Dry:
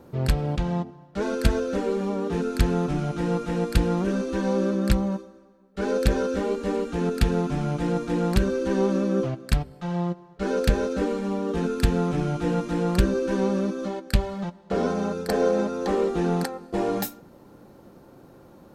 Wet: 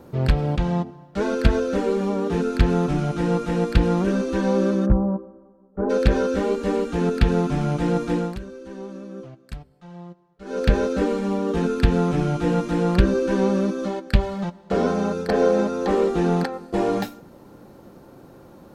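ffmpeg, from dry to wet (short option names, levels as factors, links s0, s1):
-filter_complex "[0:a]asplit=3[s0][s1][s2];[s0]afade=t=out:st=4.85:d=0.02[s3];[s1]lowpass=f=1100:w=0.5412,lowpass=f=1100:w=1.3066,afade=t=in:st=4.85:d=0.02,afade=t=out:st=5.89:d=0.02[s4];[s2]afade=t=in:st=5.89:d=0.02[s5];[s3][s4][s5]amix=inputs=3:normalize=0,asplit=3[s6][s7][s8];[s6]atrim=end=8.37,asetpts=PTS-STARTPTS,afade=t=out:st=8.11:d=0.26:silence=0.149624[s9];[s7]atrim=start=8.37:end=10.45,asetpts=PTS-STARTPTS,volume=0.15[s10];[s8]atrim=start=10.45,asetpts=PTS-STARTPTS,afade=t=in:d=0.26:silence=0.149624[s11];[s9][s10][s11]concat=n=3:v=0:a=1,acrossover=split=4500[s12][s13];[s13]acompressor=threshold=0.00355:ratio=4:attack=1:release=60[s14];[s12][s14]amix=inputs=2:normalize=0,volume=1.5"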